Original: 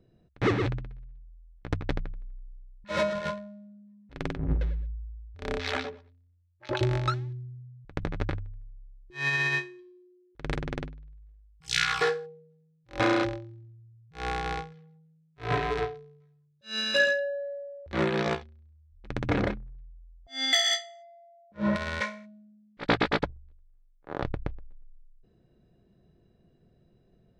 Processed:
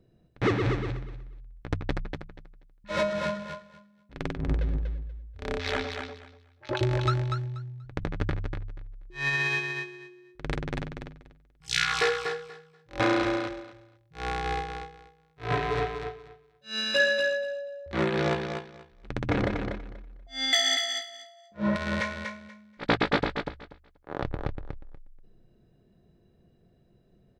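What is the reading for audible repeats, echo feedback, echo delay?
2, 18%, 241 ms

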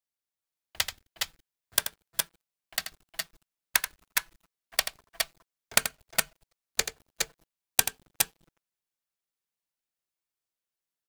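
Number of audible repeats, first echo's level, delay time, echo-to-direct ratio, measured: 2, −9.5 dB, 83 ms, −2.0 dB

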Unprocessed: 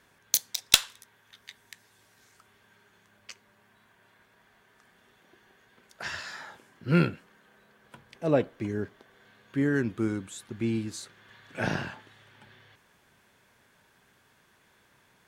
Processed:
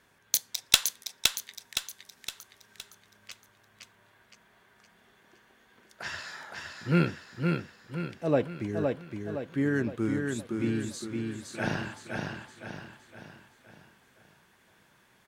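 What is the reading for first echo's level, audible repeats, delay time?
−4.0 dB, 5, 515 ms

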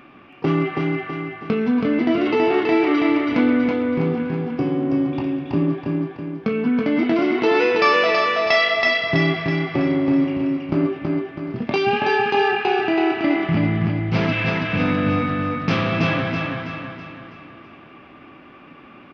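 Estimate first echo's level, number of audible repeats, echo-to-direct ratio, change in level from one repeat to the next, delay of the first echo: −3.0 dB, 5, −2.0 dB, −6.5 dB, 326 ms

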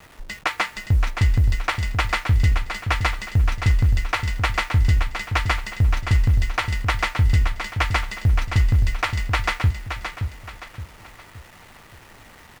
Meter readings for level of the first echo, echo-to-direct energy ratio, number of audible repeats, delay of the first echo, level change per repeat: −7.5 dB, −7.0 dB, 4, 571 ms, −8.5 dB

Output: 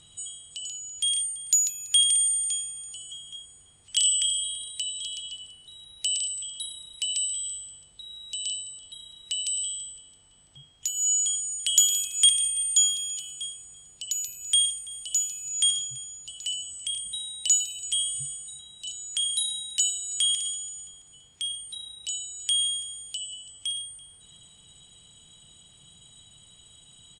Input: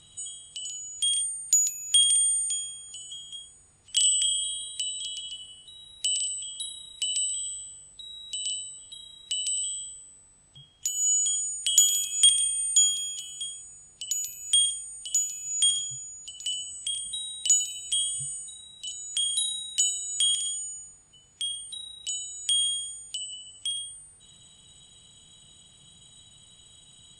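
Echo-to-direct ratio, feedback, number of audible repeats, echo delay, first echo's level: −20.0 dB, 43%, 2, 334 ms, −21.0 dB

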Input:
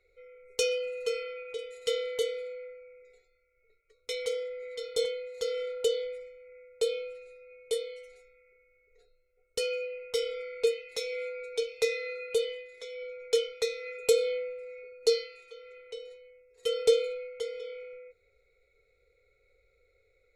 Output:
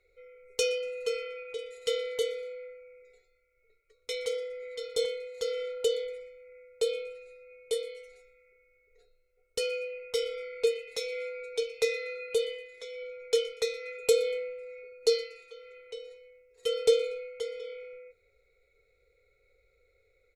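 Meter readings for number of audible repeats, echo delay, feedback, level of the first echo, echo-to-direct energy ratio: 2, 119 ms, 34%, −22.0 dB, −21.5 dB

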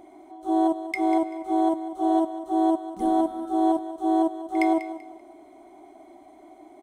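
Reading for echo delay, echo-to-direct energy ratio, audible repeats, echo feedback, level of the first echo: 193 ms, −12.0 dB, 2, 26%, −12.5 dB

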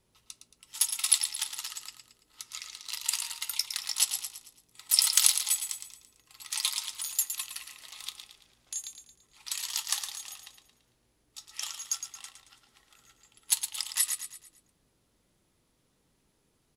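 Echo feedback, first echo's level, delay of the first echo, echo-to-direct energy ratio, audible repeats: 43%, −8.5 dB, 112 ms, −7.5 dB, 4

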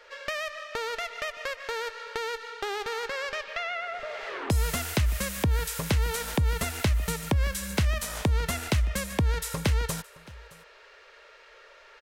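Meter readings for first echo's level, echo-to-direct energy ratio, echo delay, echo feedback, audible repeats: −22.0 dB, −22.0 dB, 619 ms, repeats not evenly spaced, 1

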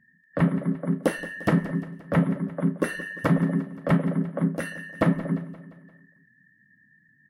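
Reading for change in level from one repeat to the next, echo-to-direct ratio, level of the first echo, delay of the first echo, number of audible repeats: −5.5 dB, −14.0 dB, −15.5 dB, 174 ms, 4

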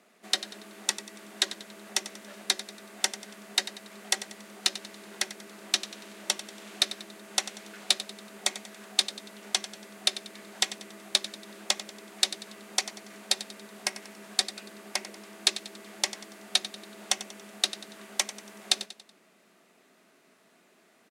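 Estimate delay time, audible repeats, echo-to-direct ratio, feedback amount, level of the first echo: 94 ms, 3, −13.0 dB, 43%, −14.0 dB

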